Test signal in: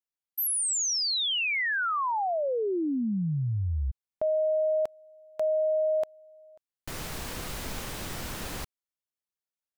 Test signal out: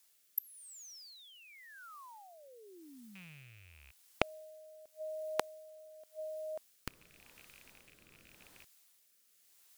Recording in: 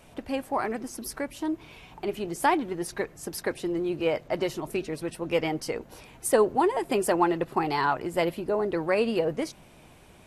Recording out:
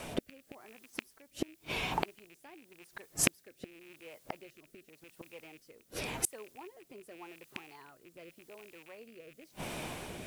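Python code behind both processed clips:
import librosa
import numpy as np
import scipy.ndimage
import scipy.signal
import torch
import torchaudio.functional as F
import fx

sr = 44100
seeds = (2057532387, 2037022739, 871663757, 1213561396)

y = fx.rattle_buzz(x, sr, strikes_db=-38.0, level_db=-18.0)
y = fx.low_shelf(y, sr, hz=130.0, db=-8.5)
y = fx.gate_flip(y, sr, shuts_db=-28.0, range_db=-39)
y = fx.dmg_noise_colour(y, sr, seeds[0], colour='blue', level_db=-78.0)
y = fx.rotary(y, sr, hz=0.9)
y = y * 10.0 ** (15.0 / 20.0)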